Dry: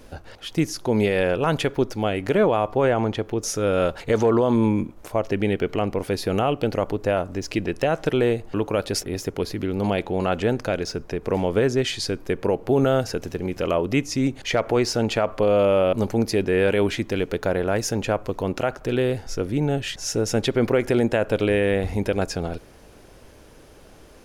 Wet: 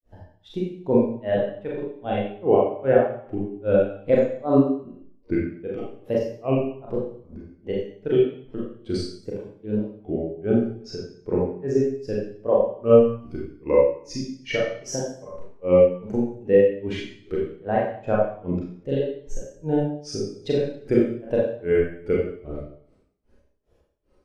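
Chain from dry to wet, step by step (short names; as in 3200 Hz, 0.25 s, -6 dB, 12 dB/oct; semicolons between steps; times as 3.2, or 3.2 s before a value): grains 0.238 s, grains 2.5/s, spray 13 ms, pitch spread up and down by 3 st; Schroeder reverb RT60 0.85 s, combs from 30 ms, DRR -4.5 dB; spectral expander 1.5:1; gain +1 dB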